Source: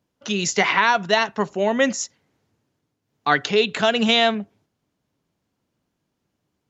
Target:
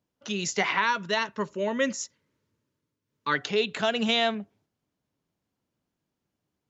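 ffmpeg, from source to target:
ffmpeg -i in.wav -filter_complex "[0:a]asettb=1/sr,asplit=3[link_01][link_02][link_03];[link_01]atrim=end=0.824[link_04];[link_02]atrim=start=0.82:end=3.35,asetpts=PTS-STARTPTS,afade=type=in:duration=0.004:curve=qsin,afade=type=out:start_time=2.526:duration=0.004:curve=qsin,asuperstop=centerf=750:order=8:qfactor=3.6[link_05];[link_03]atrim=start=3.346[link_06];[link_04][link_05]acrossfade=duration=0.004:curve1=hsin:curve2=qsin[link_07];[link_07][link_06]acrossfade=duration=0.004:curve1=qsin:curve2=hsin,volume=-7dB" out.wav

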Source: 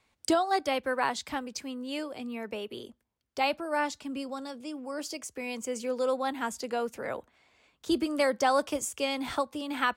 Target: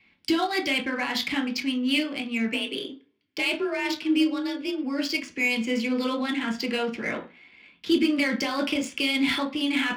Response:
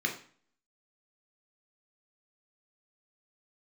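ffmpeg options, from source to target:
-filter_complex "[0:a]equalizer=frequency=250:width_type=o:width=1:gain=8,equalizer=frequency=500:width_type=o:width=1:gain=-11,equalizer=frequency=2000:width_type=o:width=1:gain=6,equalizer=frequency=4000:width_type=o:width=1:gain=7,equalizer=frequency=8000:width_type=o:width=1:gain=-6,alimiter=limit=-23dB:level=0:latency=1:release=12[link_01];[1:a]atrim=start_sample=2205,asetrate=61740,aresample=44100[link_02];[link_01][link_02]afir=irnorm=-1:irlink=0,asplit=3[link_03][link_04][link_05];[link_03]afade=type=out:start_time=2.52:duration=0.02[link_06];[link_04]afreqshift=39,afade=type=in:start_time=2.52:duration=0.02,afade=type=out:start_time=4.83:duration=0.02[link_07];[link_05]afade=type=in:start_time=4.83:duration=0.02[link_08];[link_06][link_07][link_08]amix=inputs=3:normalize=0,adynamicsmooth=sensitivity=8:basefreq=3500,volume=3.5dB"

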